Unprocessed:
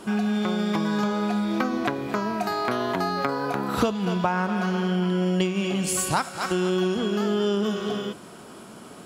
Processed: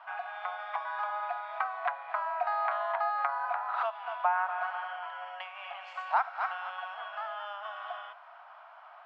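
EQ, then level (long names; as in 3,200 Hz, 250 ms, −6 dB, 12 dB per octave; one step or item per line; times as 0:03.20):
Butterworth high-pass 670 Hz 72 dB per octave
low-pass filter 1,800 Hz 12 dB per octave
high-frequency loss of the air 230 metres
0.0 dB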